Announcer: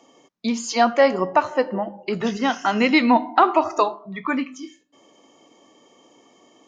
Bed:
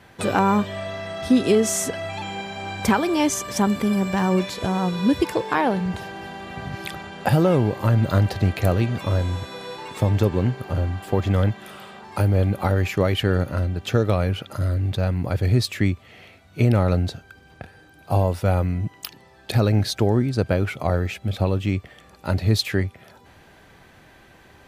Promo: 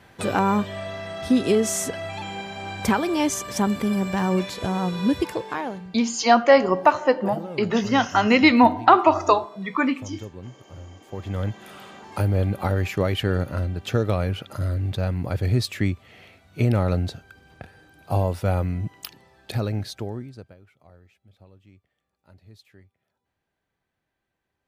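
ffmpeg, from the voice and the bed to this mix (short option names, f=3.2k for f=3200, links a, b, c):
-filter_complex "[0:a]adelay=5500,volume=1.5dB[a];[1:a]volume=13.5dB,afade=t=out:st=5.08:d=0.85:silence=0.158489,afade=t=in:st=11.04:d=0.75:silence=0.16788,afade=t=out:st=18.97:d=1.58:silence=0.0398107[b];[a][b]amix=inputs=2:normalize=0"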